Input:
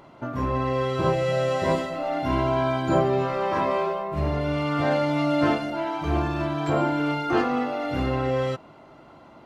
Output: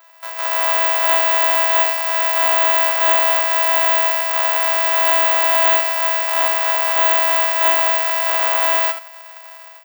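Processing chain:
samples sorted by size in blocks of 128 samples
inverse Chebyshev high-pass filter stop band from 180 Hz, stop band 70 dB
high-shelf EQ 2,200 Hz −9 dB
automatic gain control gain up to 10 dB
soft clipping −15.5 dBFS, distortion −13 dB
bad sample-rate conversion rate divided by 2×, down none, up zero stuff
wrong playback speed 25 fps video run at 24 fps
ambience of single reflections 11 ms −7.5 dB, 76 ms −9 dB
level +5.5 dB

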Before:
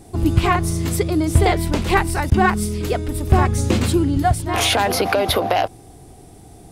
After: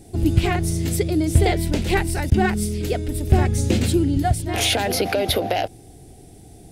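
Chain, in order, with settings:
parametric band 1,100 Hz −14.5 dB 0.65 octaves
level −1 dB

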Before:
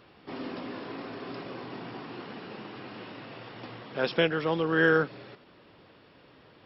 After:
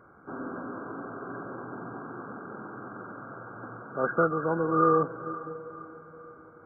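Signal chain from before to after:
hearing-aid frequency compression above 1,100 Hz 4 to 1
feedback delay with all-pass diffusion 499 ms, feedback 42%, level −14 dB

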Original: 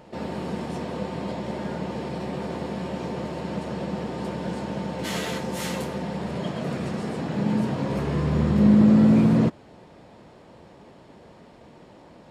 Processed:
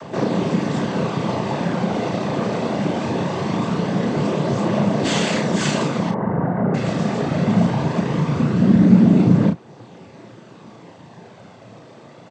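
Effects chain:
background noise brown −46 dBFS
0:06.10–0:06.74: Butterworth low-pass 1,600 Hz 48 dB per octave
cochlear-implant simulation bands 16
double-tracking delay 34 ms −5 dB
in parallel at −1 dB: downward compressor, threshold −35 dBFS, peak gain reduction 23 dB
on the sum: phase shifter 0.21 Hz, delay 1.7 ms, feedback 21%
speech leveller within 3 dB 2 s
level +3 dB

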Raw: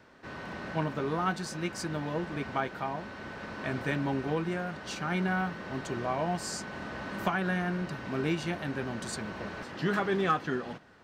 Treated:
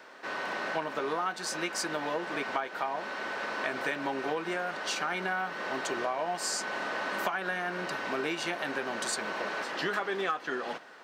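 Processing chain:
high-pass filter 470 Hz 12 dB per octave
downward compressor 6 to 1, threshold −37 dBFS, peak gain reduction 13.5 dB
level +8.5 dB

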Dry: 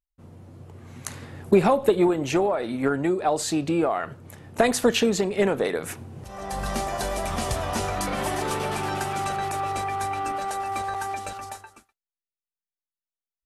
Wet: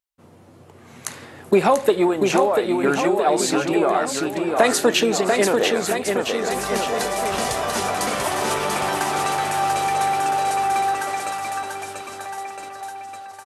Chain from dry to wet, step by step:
high-pass filter 400 Hz 6 dB per octave
on a send: bouncing-ball delay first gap 690 ms, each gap 0.9×, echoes 5
on the sum: level +5 dB

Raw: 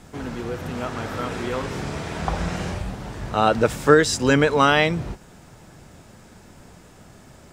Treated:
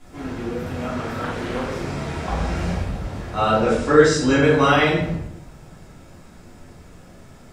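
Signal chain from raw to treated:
0:03.60–0:04.39: low-pass filter 8,500 Hz 24 dB per octave
rectangular room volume 170 cubic metres, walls mixed, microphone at 3.1 metres
0:01.24–0:01.70: highs frequency-modulated by the lows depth 0.41 ms
level −10 dB

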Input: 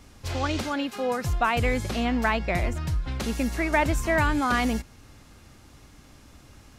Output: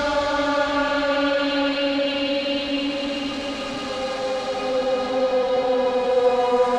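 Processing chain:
octave-band graphic EQ 125/250/4,000/8,000 Hz −11/−4/+11/+9 dB
extreme stretch with random phases 16×, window 0.25 s, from 0:00.69
hollow resonant body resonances 580/2,300 Hz, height 8 dB
in parallel at −9.5 dB: comparator with hysteresis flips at −36 dBFS
on the sum: head-to-tape spacing loss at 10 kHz 23 dB
level +5.5 dB

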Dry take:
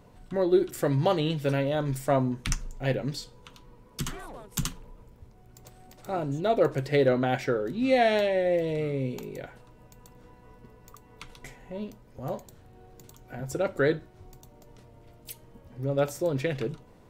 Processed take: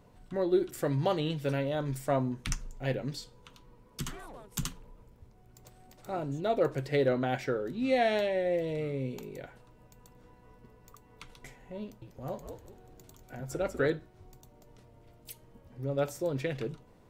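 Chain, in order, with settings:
0:11.82–0:13.90: echo with shifted repeats 195 ms, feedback 33%, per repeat −88 Hz, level −7 dB
level −4.5 dB

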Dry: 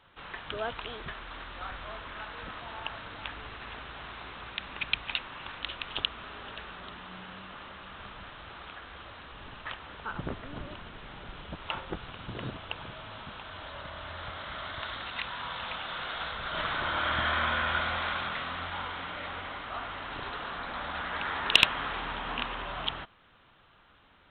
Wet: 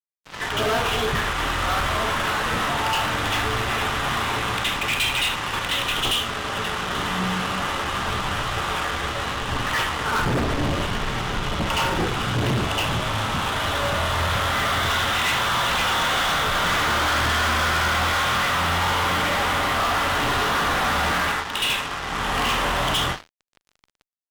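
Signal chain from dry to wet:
convolution reverb RT60 0.45 s, pre-delay 62 ms, DRR −9.5 dB
automatic gain control gain up to 11 dB
fuzz pedal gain 22 dB, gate −31 dBFS
level −6 dB

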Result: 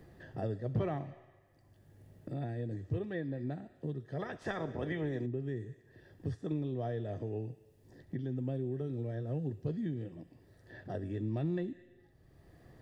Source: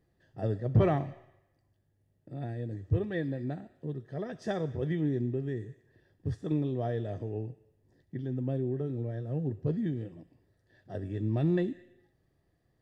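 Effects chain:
0:04.19–0:05.25: ceiling on every frequency bin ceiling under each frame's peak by 17 dB
multiband upward and downward compressor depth 70%
level −4.5 dB

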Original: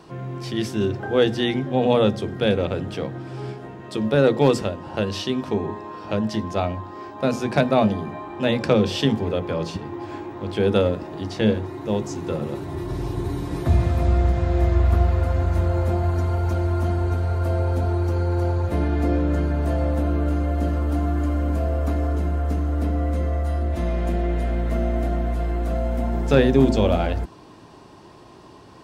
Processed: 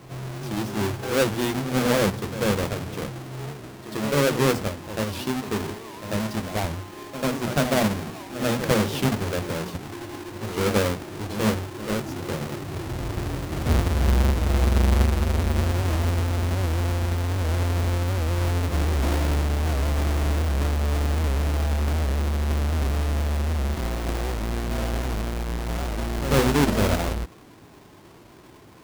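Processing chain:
each half-wave held at its own peak
backwards echo 94 ms −11 dB
wow of a warped record 78 rpm, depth 160 cents
level −7.5 dB

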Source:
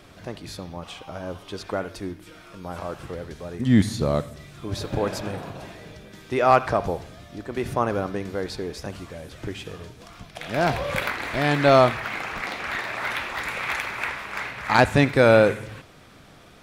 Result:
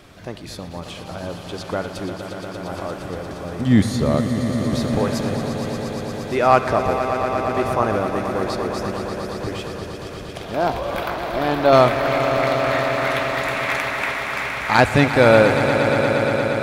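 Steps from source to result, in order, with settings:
0:10.40–0:11.73: graphic EQ with 10 bands 125 Hz −11 dB, 1,000 Hz +3 dB, 2,000 Hz −10 dB, 8,000 Hz −12 dB
echo that builds up and dies away 117 ms, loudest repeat 5, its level −11 dB
level +2.5 dB

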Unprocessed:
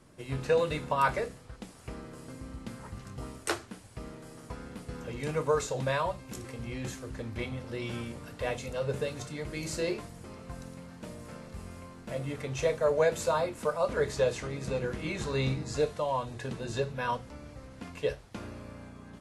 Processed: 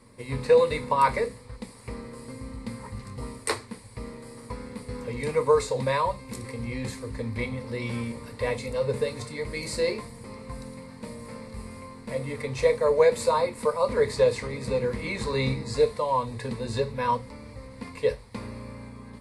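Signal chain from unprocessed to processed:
EQ curve with evenly spaced ripples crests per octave 0.94, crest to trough 11 dB
level +2.5 dB

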